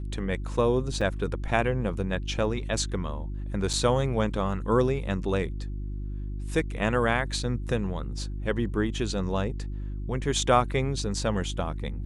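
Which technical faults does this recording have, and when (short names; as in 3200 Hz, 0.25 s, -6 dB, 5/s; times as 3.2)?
hum 50 Hz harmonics 7 -33 dBFS
1.01 gap 4.3 ms
3.73–3.74 gap 5.5 ms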